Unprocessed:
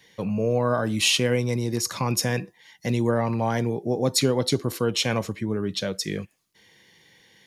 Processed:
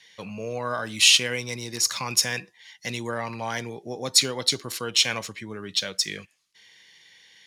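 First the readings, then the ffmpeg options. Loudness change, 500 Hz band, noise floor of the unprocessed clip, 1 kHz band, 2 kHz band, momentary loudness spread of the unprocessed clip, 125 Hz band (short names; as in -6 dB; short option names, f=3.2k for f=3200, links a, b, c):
+1.0 dB, -8.5 dB, -61 dBFS, -3.0 dB, +3.0 dB, 8 LU, -11.5 dB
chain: -af "tiltshelf=f=1.1k:g=-10,adynamicsmooth=sensitivity=6:basefreq=7.3k,volume=-2dB"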